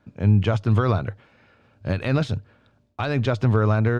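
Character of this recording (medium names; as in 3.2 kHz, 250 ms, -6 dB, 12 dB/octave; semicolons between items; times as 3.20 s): noise floor -63 dBFS; spectral tilt -7.5 dB/octave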